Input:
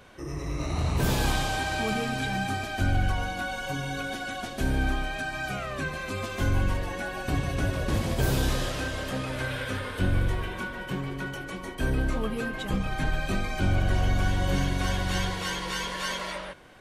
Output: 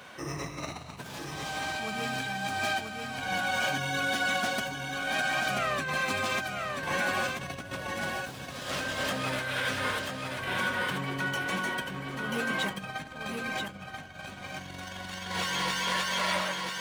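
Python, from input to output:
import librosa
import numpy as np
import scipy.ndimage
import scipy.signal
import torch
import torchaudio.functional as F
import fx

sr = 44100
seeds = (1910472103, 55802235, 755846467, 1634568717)

p1 = scipy.ndimage.median_filter(x, 3, mode='constant')
p2 = fx.peak_eq(p1, sr, hz=360.0, db=-8.5, octaves=1.2)
p3 = fx.over_compress(p2, sr, threshold_db=-35.0, ratio=-1.0)
p4 = scipy.signal.sosfilt(scipy.signal.butter(2, 190.0, 'highpass', fs=sr, output='sos'), p3)
p5 = p4 + fx.echo_single(p4, sr, ms=985, db=-4.5, dry=0)
y = p5 * librosa.db_to_amplitude(2.0)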